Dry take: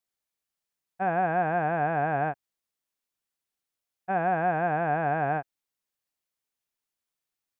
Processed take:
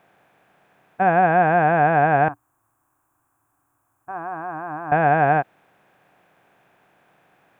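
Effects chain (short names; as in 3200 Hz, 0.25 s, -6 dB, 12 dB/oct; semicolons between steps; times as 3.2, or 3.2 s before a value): per-bin compression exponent 0.6; 2.28–4.92 EQ curve 110 Hz 0 dB, 200 Hz -27 dB, 290 Hz -5 dB, 460 Hz -23 dB, 710 Hz -16 dB, 1100 Hz -3 dB, 2000 Hz -22 dB, 4000 Hz -23 dB, 7400 Hz +3 dB; gain +8 dB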